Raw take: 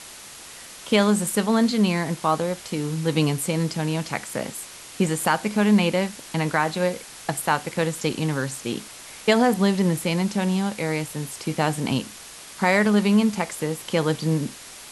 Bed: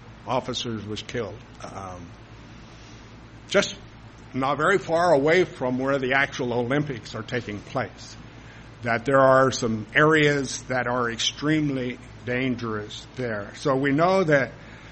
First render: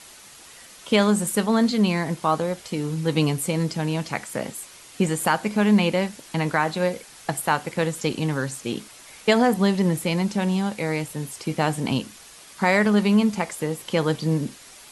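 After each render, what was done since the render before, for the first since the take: noise reduction 6 dB, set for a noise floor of -42 dBFS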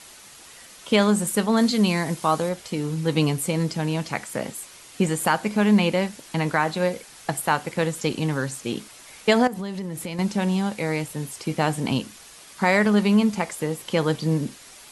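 1.57–2.49 s: treble shelf 4.9 kHz +7.5 dB; 9.47–10.19 s: compression 10:1, threshold -27 dBFS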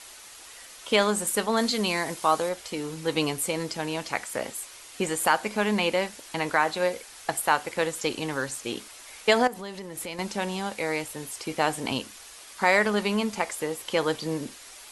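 peaking EQ 160 Hz -13.5 dB 1.4 oct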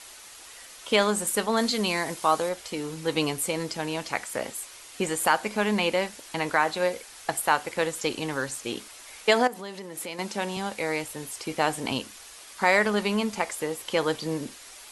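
9.27–10.57 s: high-pass 170 Hz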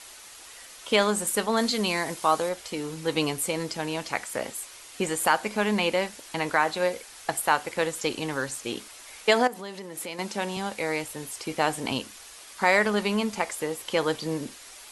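no audible change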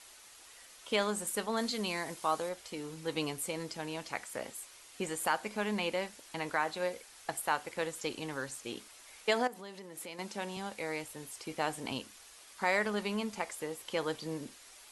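trim -9 dB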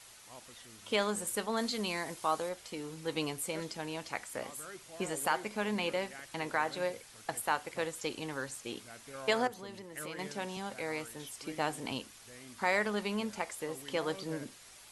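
add bed -28 dB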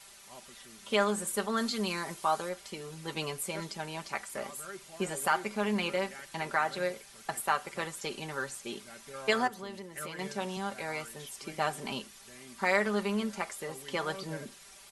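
dynamic bell 1.3 kHz, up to +5 dB, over -50 dBFS, Q 2.8; comb 5.1 ms, depth 68%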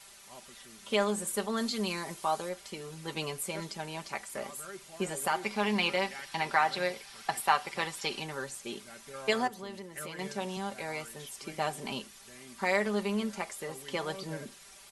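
5.43–8.22 s: time-frequency box 710–5900 Hz +6 dB; dynamic bell 1.4 kHz, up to -6 dB, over -45 dBFS, Q 2.1

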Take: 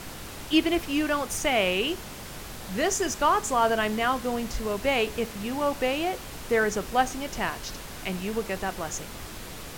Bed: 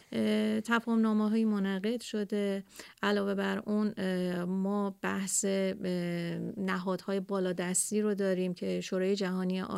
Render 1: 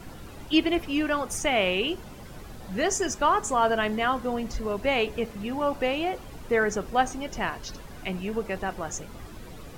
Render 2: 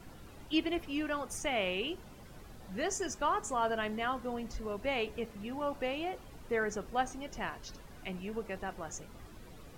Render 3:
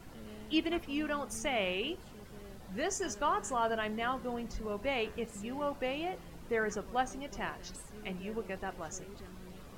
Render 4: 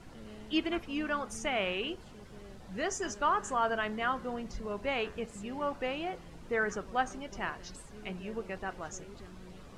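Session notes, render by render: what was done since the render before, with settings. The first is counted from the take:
noise reduction 11 dB, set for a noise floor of -40 dBFS
trim -9 dB
add bed -21 dB
low-pass 8.8 kHz 12 dB/octave; dynamic bell 1.4 kHz, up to +5 dB, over -46 dBFS, Q 1.6

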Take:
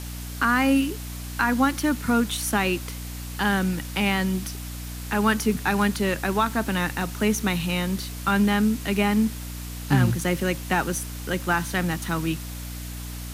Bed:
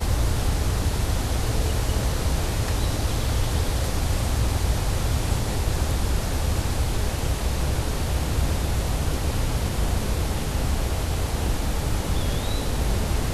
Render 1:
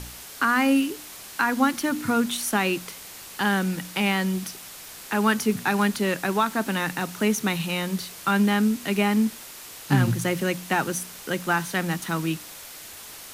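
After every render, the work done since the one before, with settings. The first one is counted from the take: de-hum 60 Hz, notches 5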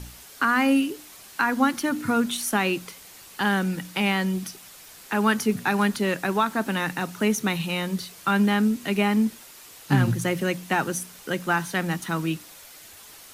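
noise reduction 6 dB, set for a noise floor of -42 dBFS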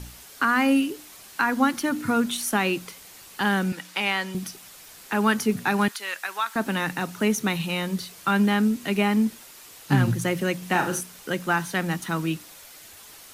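3.72–4.35 s: frequency weighting A; 5.88–6.56 s: high-pass 1.2 kHz; 10.58–11.01 s: flutter echo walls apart 6.6 m, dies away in 0.35 s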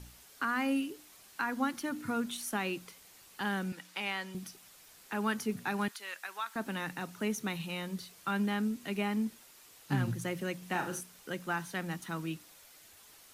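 trim -11 dB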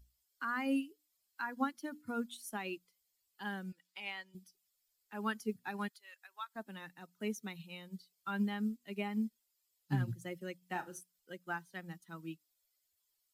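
expander on every frequency bin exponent 1.5; upward expansion 1.5:1, over -56 dBFS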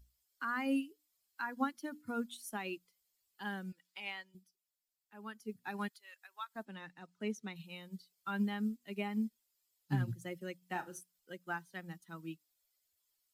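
4.13–5.73 s: dip -10.5 dB, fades 0.34 s; 6.65–7.56 s: distance through air 56 m

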